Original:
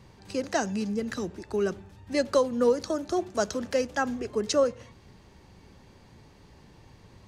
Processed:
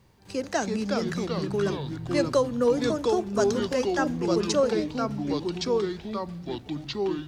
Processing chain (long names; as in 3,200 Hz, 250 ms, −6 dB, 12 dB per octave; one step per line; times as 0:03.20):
noise gate −50 dBFS, range −7 dB
bit reduction 12 bits
delay with pitch and tempo change per echo 265 ms, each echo −3 semitones, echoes 3